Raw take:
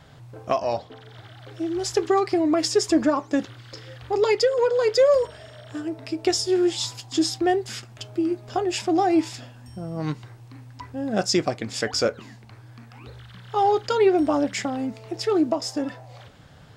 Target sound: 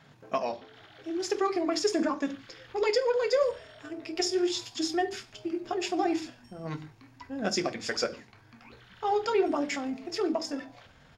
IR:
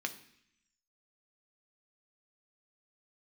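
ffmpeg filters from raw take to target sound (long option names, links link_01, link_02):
-filter_complex "[0:a]asubboost=boost=8:cutoff=59[link_01];[1:a]atrim=start_sample=2205,afade=type=out:start_time=0.31:duration=0.01,atrim=end_sample=14112[link_02];[link_01][link_02]afir=irnorm=-1:irlink=0,atempo=1.5,volume=-5.5dB"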